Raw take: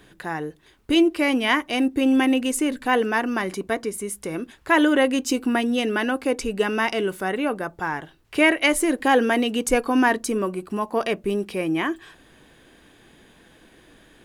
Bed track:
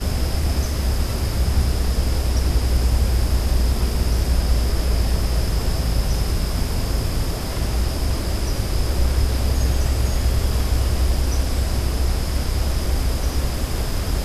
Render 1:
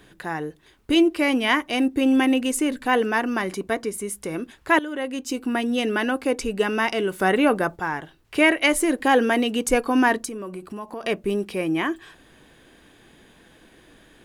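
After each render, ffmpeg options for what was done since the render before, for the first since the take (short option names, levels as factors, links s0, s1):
-filter_complex "[0:a]asplit=3[s0][s1][s2];[s0]afade=t=out:st=7.19:d=0.02[s3];[s1]acontrast=50,afade=t=in:st=7.19:d=0.02,afade=t=out:st=7.75:d=0.02[s4];[s2]afade=t=in:st=7.75:d=0.02[s5];[s3][s4][s5]amix=inputs=3:normalize=0,asettb=1/sr,asplit=3[s6][s7][s8];[s6]atrim=end=10.254[s9];[s7]atrim=start=10.25:end=11.04,asetpts=PTS-STARTPTS,afade=t=in:d=0.004:c=qsin,afade=t=out:st=0.786:d=0.004:c=qsin,acompressor=threshold=0.0282:ratio=4:attack=3.2:release=140:knee=1:detection=peak[s10];[s8]atrim=start=11.036[s11];[s9][s10]acrossfade=d=0.004:c1=hsin:c2=qsin[s12];[s12][s11]acrossfade=d=0.004:c1=qsin:c2=hsin,asplit=2[s13][s14];[s13]atrim=end=4.79,asetpts=PTS-STARTPTS,afade=t=out:st=4.786:d=0.004:c=hsin:silence=0.149624[s15];[s14]atrim=start=4.79,asetpts=PTS-STARTPTS,afade=t=in:d=1.07:silence=0.149624[s16];[s15][s16]concat=n=2:v=0:a=1"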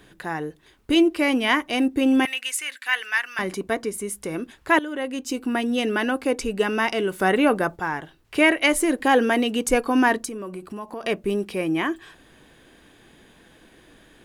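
-filter_complex "[0:a]asettb=1/sr,asplit=3[s0][s1][s2];[s0]atrim=end=2.254[s3];[s1]atrim=start=2.25:end=3.39,asetpts=PTS-STARTPTS,afade=t=in:d=0.004:c=qsin,afade=t=out:st=1.136:d=0.004:c=qsin,highpass=f=1900:t=q:w=1.7[s4];[s2]atrim=start=3.386[s5];[s3][s4]acrossfade=d=0.004:c1=hsin:c2=qsin[s6];[s6][s5]acrossfade=d=0.004:c1=qsin:c2=hsin"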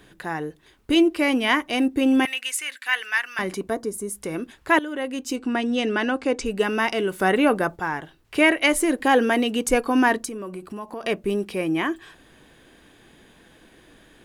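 -filter_complex "[0:a]asettb=1/sr,asplit=3[s0][s1][s2];[s0]atrim=end=3.704[s3];[s1]atrim=start=3.7:end=4.15,asetpts=PTS-STARTPTS,afade=t=in:d=0.004:c=qsin,afade=t=out:st=0.446:d=0.004:c=qsin,equalizer=f=2500:w=1.2:g=-14[s4];[s2]atrim=start=4.146[s5];[s3][s4]acrossfade=d=0.004:c1=hsin:c2=qsin[s6];[s6][s5]acrossfade=d=0.004:c1=qsin:c2=hsin,asettb=1/sr,asplit=3[s7][s8][s9];[s7]atrim=end=5.364[s10];[s8]atrim=start=5.36:end=6.46,asetpts=PTS-STARTPTS,afade=t=in:d=0.004:c=qsin,afade=t=out:st=1.096:d=0.004:c=qsin,lowpass=f=8200:w=0.5412,lowpass=f=8200:w=1.3066[s11];[s9]atrim=start=6.456[s12];[s10][s11]acrossfade=d=0.004:c1=hsin:c2=qsin[s13];[s13][s12]acrossfade=d=0.004:c1=qsin:c2=hsin"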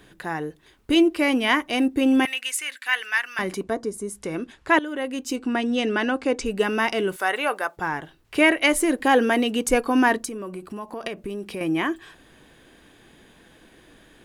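-filter_complex "[0:a]asettb=1/sr,asplit=3[s0][s1][s2];[s0]atrim=end=3.634[s3];[s1]atrim=start=3.63:end=4.85,asetpts=PTS-STARTPTS,afade=t=in:d=0.004:c=qsin,afade=t=out:st=1.216:d=0.004:c=qsin,lowpass=8600[s4];[s2]atrim=start=4.846[s5];[s3][s4]acrossfade=d=0.004:c1=hsin:c2=qsin[s6];[s6][s5]acrossfade=d=0.004:c1=qsin:c2=hsin,asettb=1/sr,asplit=3[s7][s8][s9];[s7]atrim=end=7.164[s10];[s8]atrim=start=7.16:end=7.77,asetpts=PTS-STARTPTS,afade=t=in:d=0.004:c=qsin,afade=t=out:st=0.606:d=0.004:c=qsin,highpass=720[s11];[s9]atrim=start=7.766[s12];[s10][s11]acrossfade=d=0.004:c1=hsin:c2=qsin[s13];[s13][s12]acrossfade=d=0.004:c1=qsin:c2=hsin,asettb=1/sr,asplit=3[s14][s15][s16];[s14]atrim=end=11.074[s17];[s15]atrim=start=11.07:end=11.61,asetpts=PTS-STARTPTS,afade=t=in:d=0.004:c=qsin,afade=t=out:st=0.536:d=0.004:c=qsin,acompressor=threshold=0.0398:ratio=5:attack=3.2:release=140:knee=1:detection=peak[s18];[s16]atrim=start=11.606[s19];[s17][s18]acrossfade=d=0.004:c1=hsin:c2=qsin[s20];[s20][s19]acrossfade=d=0.004:c1=qsin:c2=hsin"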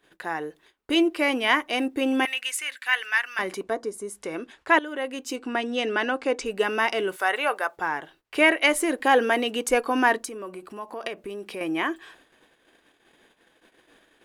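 -af "agate=range=0.178:threshold=0.00282:ratio=16:detection=peak,bass=f=250:g=-14,treble=f=4000:g=-3"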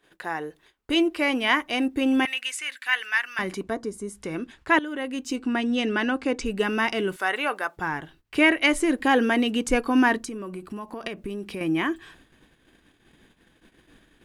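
-filter_complex "[0:a]acrossover=split=9500[s0][s1];[s1]acompressor=threshold=0.00224:ratio=4:attack=1:release=60[s2];[s0][s2]amix=inputs=2:normalize=0,asubboost=boost=6:cutoff=210"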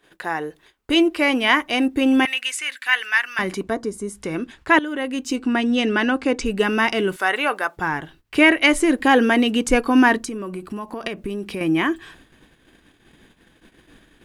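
-af "volume=1.78,alimiter=limit=0.708:level=0:latency=1"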